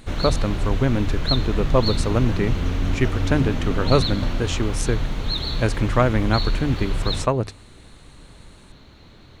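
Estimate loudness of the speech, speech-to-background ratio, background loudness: -24.0 LUFS, 2.5 dB, -26.5 LUFS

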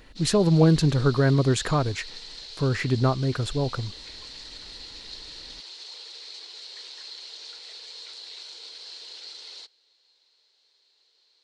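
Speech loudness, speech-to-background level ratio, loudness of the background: -23.0 LUFS, 16.0 dB, -39.0 LUFS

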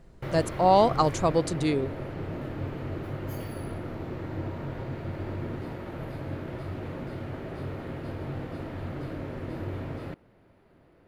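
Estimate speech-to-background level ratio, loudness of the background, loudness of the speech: 11.5 dB, -36.0 LUFS, -24.5 LUFS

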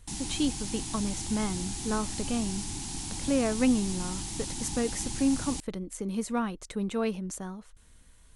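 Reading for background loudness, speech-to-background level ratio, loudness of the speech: -35.5 LUFS, 3.5 dB, -32.0 LUFS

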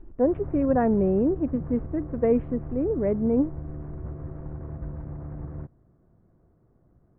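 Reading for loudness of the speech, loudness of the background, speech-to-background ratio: -25.0 LUFS, -37.5 LUFS, 12.5 dB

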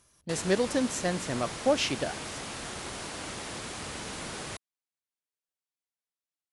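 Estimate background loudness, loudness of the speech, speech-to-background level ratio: -37.5 LUFS, -30.0 LUFS, 7.5 dB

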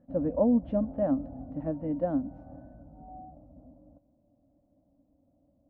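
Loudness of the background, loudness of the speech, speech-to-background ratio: -46.5 LUFS, -29.5 LUFS, 17.0 dB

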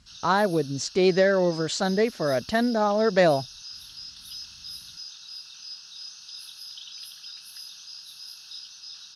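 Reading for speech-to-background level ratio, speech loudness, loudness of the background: 16.0 dB, -23.5 LUFS, -39.5 LUFS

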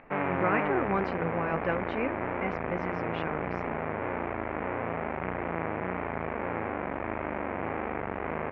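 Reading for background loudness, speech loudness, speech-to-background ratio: -33.0 LUFS, -33.5 LUFS, -0.5 dB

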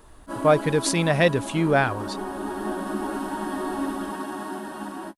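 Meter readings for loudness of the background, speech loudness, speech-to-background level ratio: -31.5 LUFS, -22.0 LUFS, 9.5 dB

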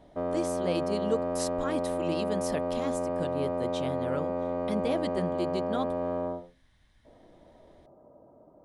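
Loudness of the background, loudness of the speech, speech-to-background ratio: -31.5 LUFS, -35.5 LUFS, -4.0 dB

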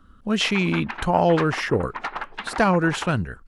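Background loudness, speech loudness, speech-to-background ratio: -34.0 LUFS, -22.0 LUFS, 12.0 dB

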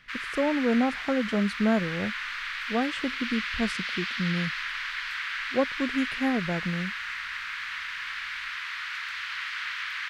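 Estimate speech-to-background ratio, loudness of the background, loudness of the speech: 3.0 dB, -32.0 LUFS, -29.0 LUFS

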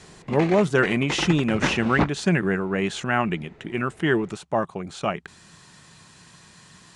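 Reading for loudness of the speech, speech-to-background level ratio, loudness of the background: -24.0 LUFS, 5.5 dB, -29.5 LUFS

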